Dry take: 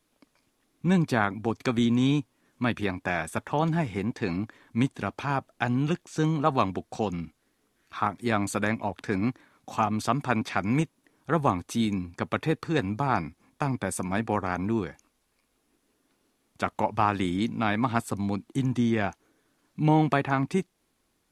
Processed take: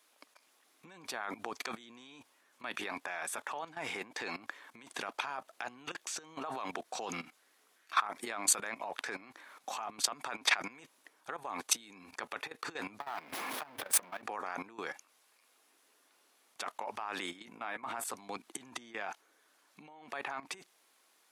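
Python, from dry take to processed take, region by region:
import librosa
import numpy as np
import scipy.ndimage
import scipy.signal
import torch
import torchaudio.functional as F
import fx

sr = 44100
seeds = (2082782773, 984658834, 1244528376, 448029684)

y = fx.chain(x, sr, fx.power_curve(exponent=0.5),
    fx.peak_eq(hz=7400.0, db=-10.5, octaves=1.3),
    fx.band_squash(depth_pct=40), at=(13.0, 14.22))
y = fx.chain(y, sr, fx.peak_eq(hz=4300.0, db=-8.5, octaves=1.1),
    fx.doubler(ms=16.0, db=-10),
    fx.env_flatten(amount_pct=50), at=(17.45, 18.04))
y = fx.over_compress(y, sr, threshold_db=-33.0, ratio=-1.0)
y = scipy.signal.sosfilt(scipy.signal.butter(2, 670.0, 'highpass', fs=sr, output='sos'), y)
y = fx.level_steps(y, sr, step_db=15)
y = y * librosa.db_to_amplitude(5.5)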